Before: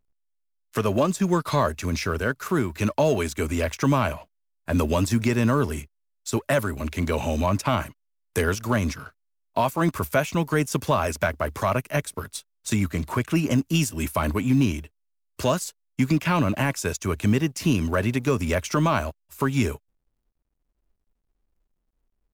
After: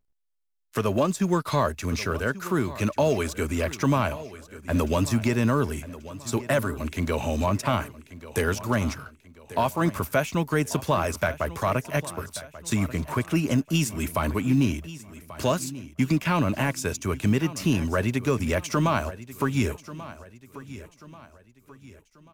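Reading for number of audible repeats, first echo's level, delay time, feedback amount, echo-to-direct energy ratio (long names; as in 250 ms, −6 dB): 3, −16.0 dB, 1,137 ms, 40%, −15.5 dB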